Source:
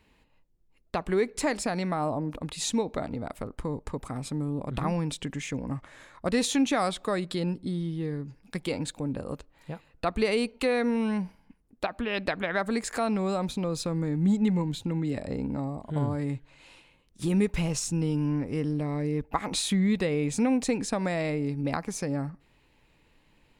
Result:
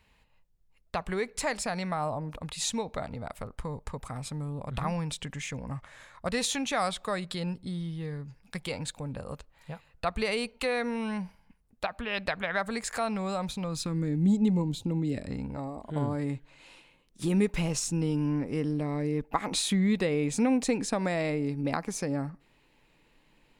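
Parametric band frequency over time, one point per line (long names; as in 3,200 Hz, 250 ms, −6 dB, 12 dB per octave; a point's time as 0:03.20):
parametric band −11.5 dB 0.97 octaves
0:13.59 310 Hz
0:14.35 1,700 Hz
0:15.01 1,700 Hz
0:15.57 220 Hz
0:16.07 70 Hz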